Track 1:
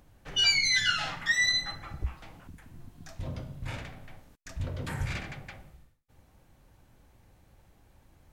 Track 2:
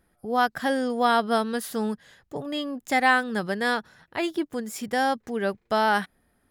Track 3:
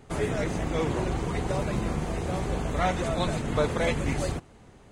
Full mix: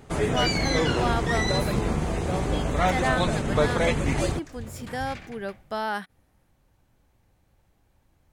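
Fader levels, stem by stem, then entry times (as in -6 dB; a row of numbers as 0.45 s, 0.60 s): -5.0 dB, -7.0 dB, +3.0 dB; 0.00 s, 0.00 s, 0.00 s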